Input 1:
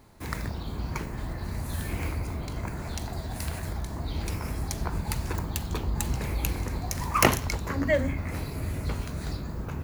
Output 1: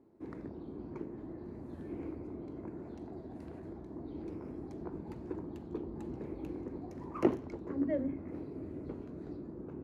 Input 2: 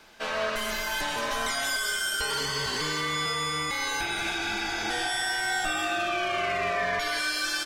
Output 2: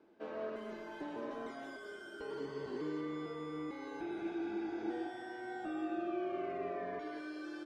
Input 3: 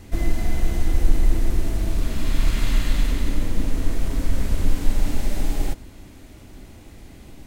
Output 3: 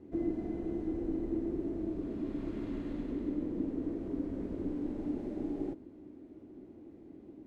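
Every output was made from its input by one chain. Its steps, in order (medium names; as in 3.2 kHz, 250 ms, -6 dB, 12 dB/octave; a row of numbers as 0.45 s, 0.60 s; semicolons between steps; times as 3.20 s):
band-pass filter 330 Hz, Q 3.1; trim +1.5 dB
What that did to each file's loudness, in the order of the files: -10.0 LU, -14.5 LU, -10.5 LU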